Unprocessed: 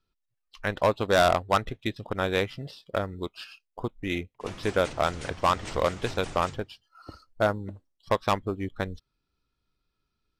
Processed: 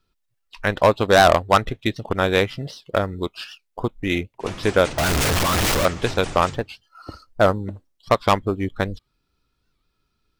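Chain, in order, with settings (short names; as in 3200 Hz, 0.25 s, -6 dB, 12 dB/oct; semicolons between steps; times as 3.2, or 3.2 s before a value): 4.98–5.86 infinite clipping; record warp 78 rpm, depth 160 cents; gain +7.5 dB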